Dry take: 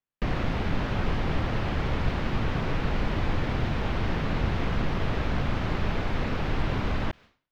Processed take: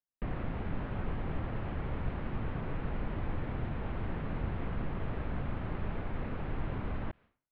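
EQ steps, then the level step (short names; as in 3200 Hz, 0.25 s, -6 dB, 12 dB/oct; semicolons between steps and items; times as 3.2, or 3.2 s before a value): air absorption 480 m; -8.0 dB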